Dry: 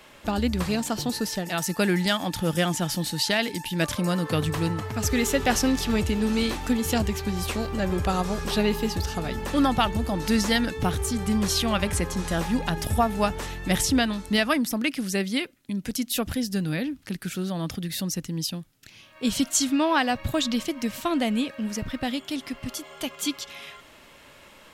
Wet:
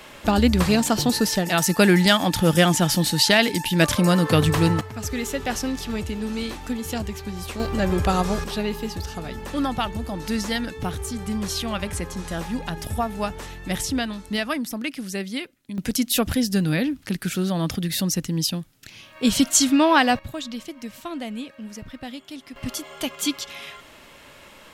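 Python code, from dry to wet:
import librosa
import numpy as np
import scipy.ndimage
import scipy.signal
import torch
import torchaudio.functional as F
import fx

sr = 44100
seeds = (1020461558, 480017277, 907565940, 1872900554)

y = fx.gain(x, sr, db=fx.steps((0.0, 7.0), (4.81, -4.0), (7.6, 4.0), (8.44, -3.0), (15.78, 5.5), (20.19, -7.0), (22.56, 3.5)))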